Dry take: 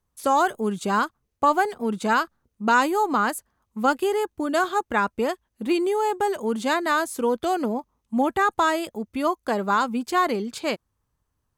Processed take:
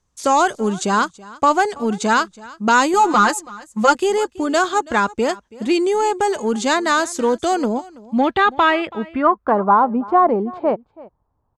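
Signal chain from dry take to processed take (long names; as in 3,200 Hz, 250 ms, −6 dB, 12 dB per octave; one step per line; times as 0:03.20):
0:02.93–0:03.95: comb filter 5.7 ms, depth 94%
in parallel at −4 dB: soft clipping −18 dBFS, distortion −12 dB
on the sum: low-pass filter sweep 6,800 Hz → 840 Hz, 0:07.77–0:09.80
single-tap delay 329 ms −21 dB
level +1.5 dB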